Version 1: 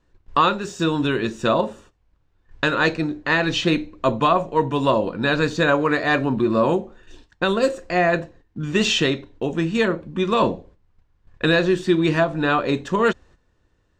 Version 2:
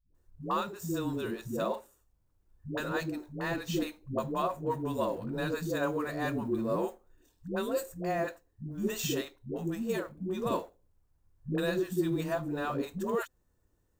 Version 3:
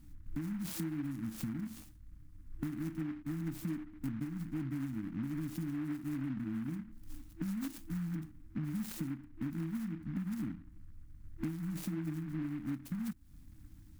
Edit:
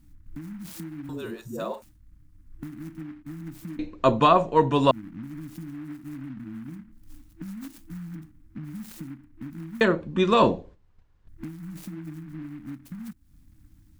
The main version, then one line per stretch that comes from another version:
3
0:01.09–0:01.82: punch in from 2
0:03.79–0:04.91: punch in from 1
0:09.81–0:11.28: punch in from 1

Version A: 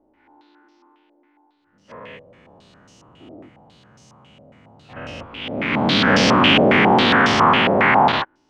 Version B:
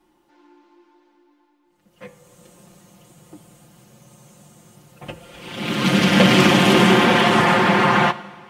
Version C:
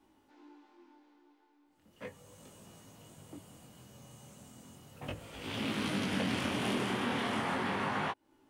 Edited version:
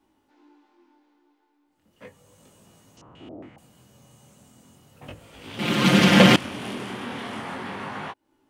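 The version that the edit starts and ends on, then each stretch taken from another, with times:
C
0:02.97–0:03.58: punch in from A
0:05.59–0:06.36: punch in from B

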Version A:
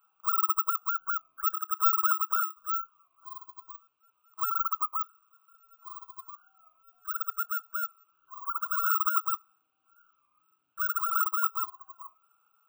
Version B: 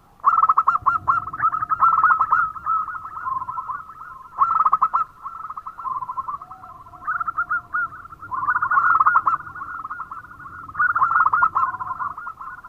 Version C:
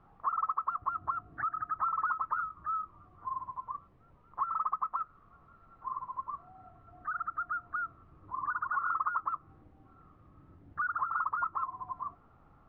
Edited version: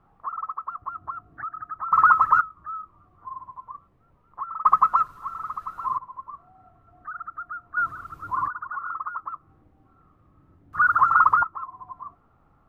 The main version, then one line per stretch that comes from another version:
C
0:01.92–0:02.41: punch in from B
0:04.65–0:05.98: punch in from B
0:07.77–0:08.48: punch in from B
0:10.73–0:11.43: punch in from B
not used: A

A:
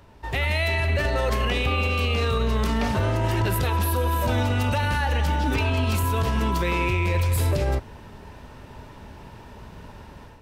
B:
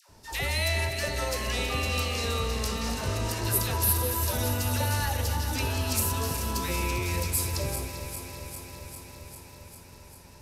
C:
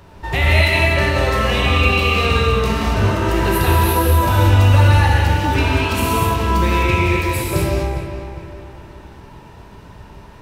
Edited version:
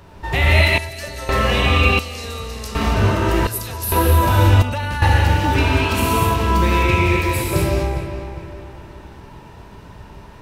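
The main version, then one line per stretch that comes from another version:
C
0:00.78–0:01.29: punch in from B
0:01.99–0:02.75: punch in from B
0:03.47–0:03.92: punch in from B
0:04.62–0:05.02: punch in from A

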